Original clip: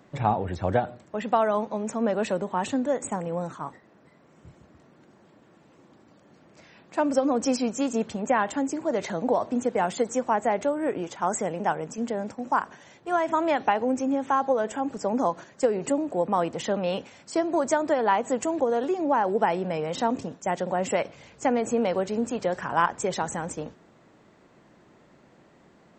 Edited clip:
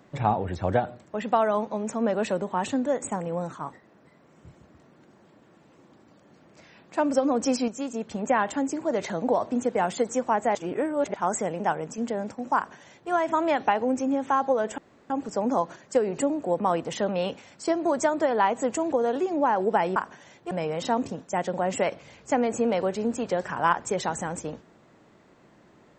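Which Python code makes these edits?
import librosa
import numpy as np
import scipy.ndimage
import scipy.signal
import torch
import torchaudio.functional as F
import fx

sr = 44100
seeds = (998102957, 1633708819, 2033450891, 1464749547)

y = fx.edit(x, sr, fx.clip_gain(start_s=7.68, length_s=0.43, db=-5.5),
    fx.reverse_span(start_s=10.55, length_s=0.59),
    fx.duplicate(start_s=12.56, length_s=0.55, to_s=19.64),
    fx.insert_room_tone(at_s=14.78, length_s=0.32), tone=tone)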